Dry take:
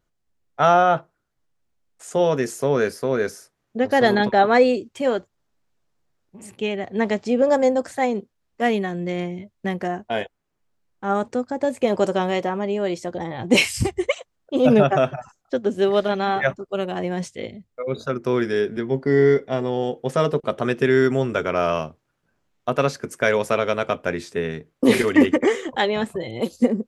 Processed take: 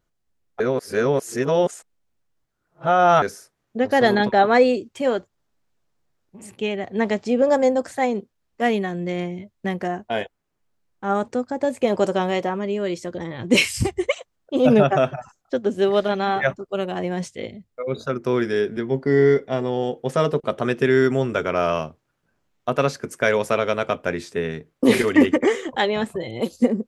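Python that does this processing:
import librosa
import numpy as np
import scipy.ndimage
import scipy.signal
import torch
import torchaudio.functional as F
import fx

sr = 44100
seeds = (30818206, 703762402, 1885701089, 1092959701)

y = fx.peak_eq(x, sr, hz=770.0, db=-11.5, octaves=0.4, at=(12.55, 13.7))
y = fx.edit(y, sr, fx.reverse_span(start_s=0.6, length_s=2.62), tone=tone)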